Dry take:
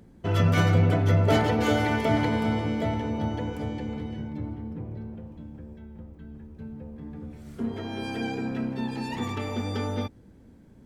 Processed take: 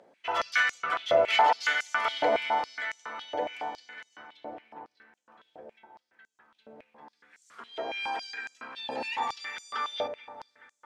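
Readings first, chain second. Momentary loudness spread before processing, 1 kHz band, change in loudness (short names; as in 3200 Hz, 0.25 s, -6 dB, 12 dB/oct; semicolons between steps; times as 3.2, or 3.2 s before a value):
21 LU, +3.5 dB, -2.5 dB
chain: air absorption 63 m; darkening echo 0.214 s, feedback 85%, low-pass 2700 Hz, level -13.5 dB; stepped high-pass 7.2 Hz 610–6800 Hz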